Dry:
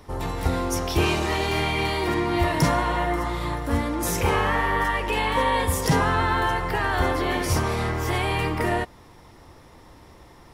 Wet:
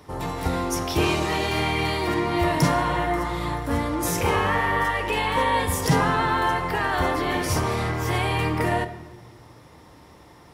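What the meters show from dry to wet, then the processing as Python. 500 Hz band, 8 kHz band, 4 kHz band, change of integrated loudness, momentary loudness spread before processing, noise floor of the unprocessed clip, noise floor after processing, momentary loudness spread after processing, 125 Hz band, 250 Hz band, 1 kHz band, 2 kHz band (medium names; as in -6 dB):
0.0 dB, +0.5 dB, 0.0 dB, 0.0 dB, 5 LU, -49 dBFS, -49 dBFS, 5 LU, 0.0 dB, +0.5 dB, +0.5 dB, 0.0 dB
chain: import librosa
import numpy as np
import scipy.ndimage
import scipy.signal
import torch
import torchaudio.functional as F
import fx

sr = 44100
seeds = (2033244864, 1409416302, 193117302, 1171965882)

y = scipy.signal.sosfilt(scipy.signal.butter(2, 68.0, 'highpass', fs=sr, output='sos'), x)
y = fx.room_shoebox(y, sr, seeds[0], volume_m3=760.0, walls='mixed', distance_m=0.45)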